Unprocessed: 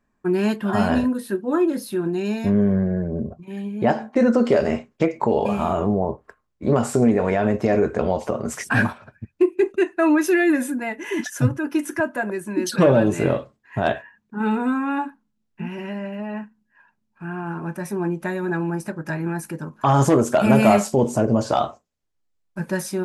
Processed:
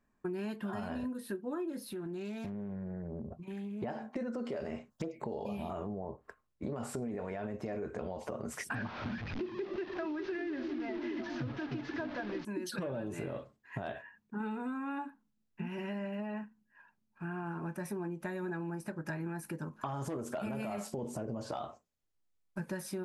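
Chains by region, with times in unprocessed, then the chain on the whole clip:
1.83–3.83 compressor 4:1, threshold -32 dBFS + Doppler distortion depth 0.18 ms
4.9–5.7 high shelf 6600 Hz +11 dB + envelope phaser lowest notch 390 Hz, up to 2200 Hz, full sweep at -15 dBFS
8.75–12.45 delta modulation 32 kbps, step -24.5 dBFS + air absorption 200 m + delay with a stepping band-pass 0.3 s, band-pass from 200 Hz, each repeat 0.7 oct, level -3 dB
whole clip: dynamic EQ 6700 Hz, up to -5 dB, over -48 dBFS, Q 2; limiter -14 dBFS; compressor 6:1, threshold -30 dBFS; gain -5.5 dB

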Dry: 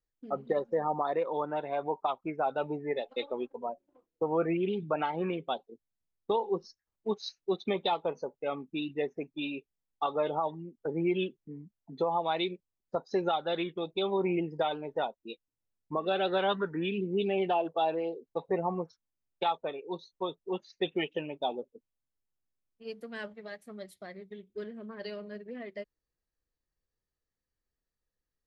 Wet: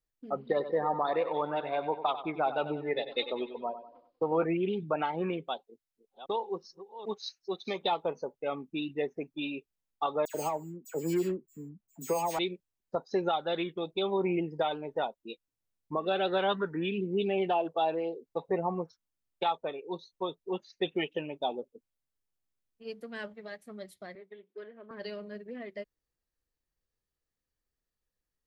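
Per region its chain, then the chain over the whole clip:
0.41–4.44 steep low-pass 5100 Hz 96 dB/oct + high shelf 3000 Hz +11.5 dB + feedback echo 95 ms, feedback 43%, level -11.5 dB
5.47–7.82 reverse delay 0.402 s, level -12.5 dB + low shelf 490 Hz -8 dB
10.25–12.39 median filter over 25 samples + careless resampling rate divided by 6×, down filtered, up hold + dispersion lows, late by 94 ms, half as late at 2400 Hz
24.15–24.91 BPF 470–2600 Hz + three-band squash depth 40%
whole clip: dry

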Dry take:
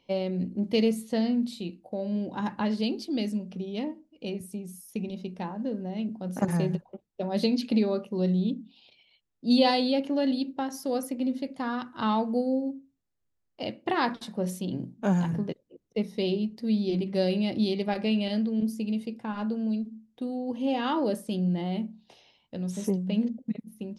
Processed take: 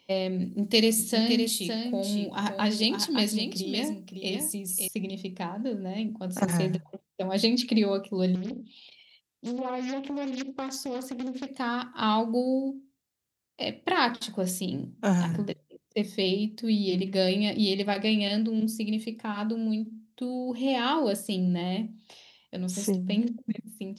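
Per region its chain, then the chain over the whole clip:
0.43–4.88 high shelf 5300 Hz +11.5 dB + echo 0.561 s -6.5 dB
8.35–11.48 treble ducked by the level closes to 1000 Hz, closed at -18 dBFS + compressor 5:1, threshold -30 dBFS + Doppler distortion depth 0.69 ms
whole clip: HPF 58 Hz; high shelf 2100 Hz +9.5 dB; notches 50/100/150 Hz

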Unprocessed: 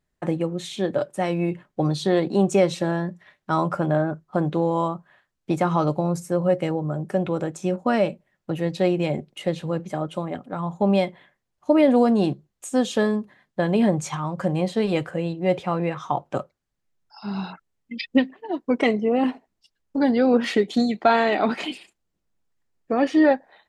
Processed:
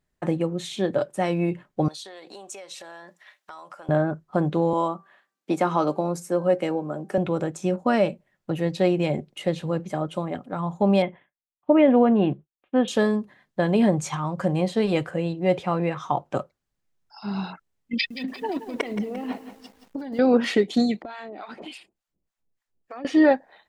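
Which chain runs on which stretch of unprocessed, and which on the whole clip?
1.88–3.89 HPF 670 Hz + compressor, threshold -40 dBFS + high shelf 3300 Hz +7 dB
4.73–7.18 HPF 200 Hz 24 dB/oct + de-hum 389.8 Hz, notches 7
11.02–12.88 steep low-pass 3200 Hz 48 dB/oct + expander -47 dBFS
17.93–20.19 negative-ratio compressor -30 dBFS + lo-fi delay 0.174 s, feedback 55%, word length 8-bit, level -11.5 dB
21.02–23.05 harmonic tremolo 3.4 Hz, depth 100%, crossover 710 Hz + compressor 16:1, threshold -33 dBFS
whole clip: dry

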